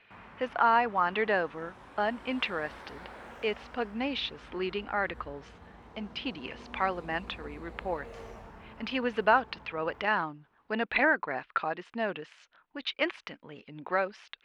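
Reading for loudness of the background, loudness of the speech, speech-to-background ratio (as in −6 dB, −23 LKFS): −49.5 LKFS, −31.5 LKFS, 18.0 dB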